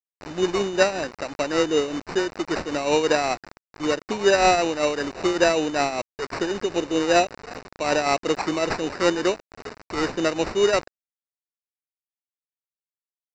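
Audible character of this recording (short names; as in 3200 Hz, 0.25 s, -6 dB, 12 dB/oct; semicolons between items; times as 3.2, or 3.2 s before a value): a quantiser's noise floor 6-bit, dither none; tremolo triangle 5.2 Hz, depth 60%; aliases and images of a low sample rate 3300 Hz, jitter 0%; µ-law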